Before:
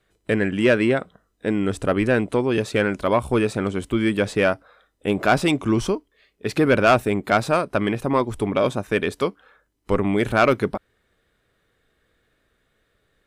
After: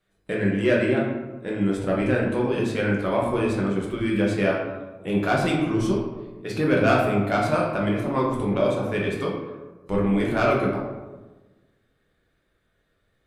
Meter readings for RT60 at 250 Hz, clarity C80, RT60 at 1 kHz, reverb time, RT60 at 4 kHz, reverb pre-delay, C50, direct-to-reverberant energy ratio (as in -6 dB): 1.4 s, 5.0 dB, 1.1 s, 1.2 s, 0.60 s, 5 ms, 2.5 dB, -3.5 dB